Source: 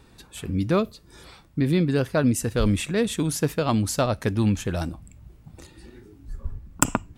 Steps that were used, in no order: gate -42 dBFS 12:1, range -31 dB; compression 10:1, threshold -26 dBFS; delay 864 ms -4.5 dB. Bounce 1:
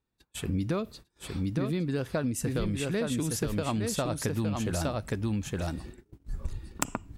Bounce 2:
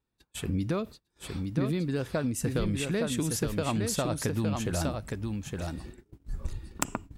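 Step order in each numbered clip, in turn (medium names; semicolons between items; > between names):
delay > gate > compression; compression > delay > gate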